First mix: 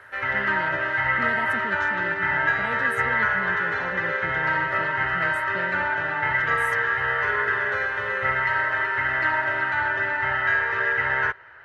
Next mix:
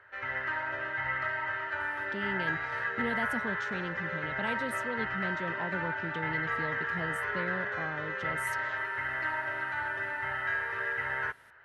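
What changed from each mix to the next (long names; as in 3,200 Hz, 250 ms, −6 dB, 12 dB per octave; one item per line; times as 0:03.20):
speech: entry +1.80 s
background −10.0 dB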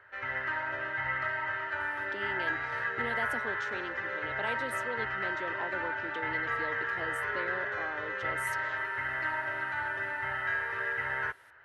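speech: add high-pass filter 300 Hz 24 dB per octave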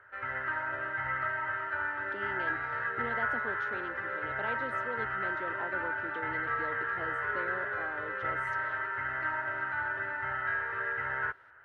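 background: add parametric band 1,400 Hz +7.5 dB 0.4 octaves
master: add head-to-tape spacing loss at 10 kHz 25 dB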